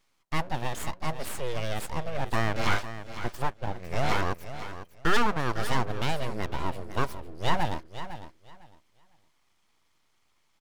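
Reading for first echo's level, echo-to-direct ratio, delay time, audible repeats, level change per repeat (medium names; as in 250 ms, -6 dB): -12.0 dB, -12.0 dB, 504 ms, 2, -14.0 dB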